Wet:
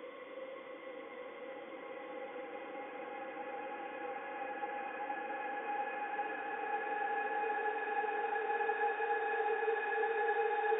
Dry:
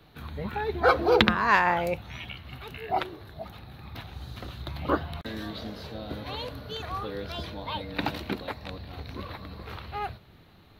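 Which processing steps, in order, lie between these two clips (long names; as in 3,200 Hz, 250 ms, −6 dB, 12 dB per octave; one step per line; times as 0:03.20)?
three sine waves on the formant tracks
high-shelf EQ 2,300 Hz +10.5 dB
extreme stretch with random phases 39×, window 0.50 s, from 0:00.34
level −8 dB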